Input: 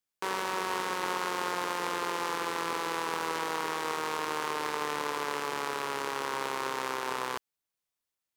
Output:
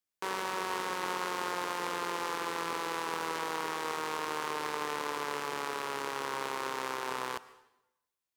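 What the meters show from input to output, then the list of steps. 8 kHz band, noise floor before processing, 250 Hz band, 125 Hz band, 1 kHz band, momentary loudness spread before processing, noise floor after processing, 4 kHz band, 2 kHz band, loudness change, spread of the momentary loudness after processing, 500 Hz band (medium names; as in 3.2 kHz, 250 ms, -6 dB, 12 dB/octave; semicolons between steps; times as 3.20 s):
-2.5 dB, under -85 dBFS, -2.5 dB, -2.5 dB, -2.5 dB, 2 LU, under -85 dBFS, -2.5 dB, -2.5 dB, -2.5 dB, 2 LU, -2.5 dB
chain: plate-style reverb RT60 0.91 s, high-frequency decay 0.9×, pre-delay 95 ms, DRR 17.5 dB; trim -2.5 dB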